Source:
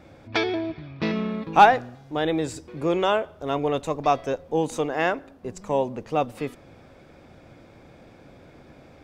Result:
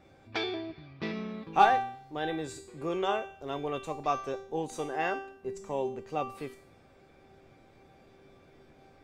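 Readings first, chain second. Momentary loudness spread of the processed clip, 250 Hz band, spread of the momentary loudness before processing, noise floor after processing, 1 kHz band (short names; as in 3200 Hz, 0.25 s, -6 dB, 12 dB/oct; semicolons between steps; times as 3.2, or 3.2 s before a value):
14 LU, -10.0 dB, 14 LU, -59 dBFS, -7.0 dB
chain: resonator 390 Hz, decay 0.59 s, mix 90%; gain +8.5 dB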